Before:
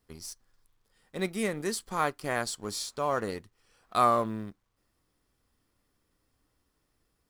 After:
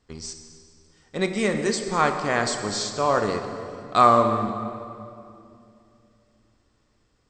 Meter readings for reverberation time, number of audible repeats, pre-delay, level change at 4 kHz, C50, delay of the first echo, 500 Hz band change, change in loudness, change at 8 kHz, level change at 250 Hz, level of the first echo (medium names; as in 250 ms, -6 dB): 2.6 s, no echo, 19 ms, +8.0 dB, 7.0 dB, no echo, +8.5 dB, +7.5 dB, +6.0 dB, +8.5 dB, no echo